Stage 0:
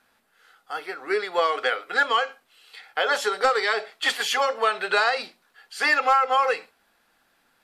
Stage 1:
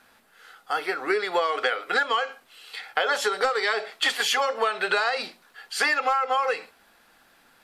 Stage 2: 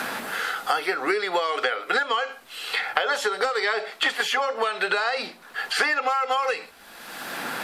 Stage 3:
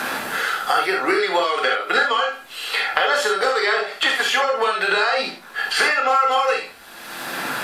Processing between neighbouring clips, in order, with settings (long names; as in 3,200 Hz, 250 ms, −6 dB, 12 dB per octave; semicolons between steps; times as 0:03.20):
downward compressor 6 to 1, threshold −28 dBFS, peak gain reduction 12 dB; level +7 dB
multiband upward and downward compressor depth 100%
convolution reverb, pre-delay 3 ms, DRR 0.5 dB; level +2.5 dB